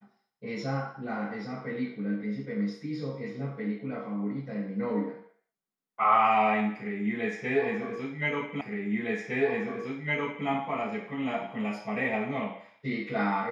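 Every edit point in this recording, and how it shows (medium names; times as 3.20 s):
8.61 s: repeat of the last 1.86 s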